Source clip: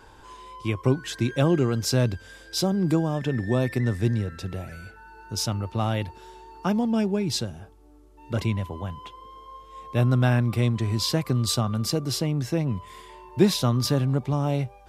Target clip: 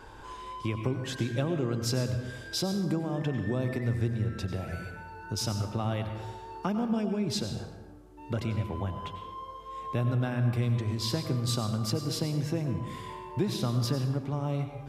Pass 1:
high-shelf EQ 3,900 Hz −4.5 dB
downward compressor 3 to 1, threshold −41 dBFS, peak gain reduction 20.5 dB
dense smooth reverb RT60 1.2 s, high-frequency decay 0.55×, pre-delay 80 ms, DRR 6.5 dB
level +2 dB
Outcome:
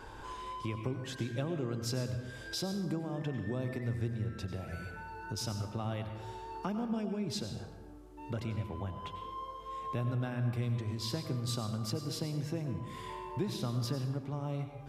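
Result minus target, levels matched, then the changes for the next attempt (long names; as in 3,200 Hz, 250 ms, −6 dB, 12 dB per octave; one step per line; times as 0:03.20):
downward compressor: peak gain reduction +6 dB
change: downward compressor 3 to 1, threshold −32 dBFS, peak gain reduction 14.5 dB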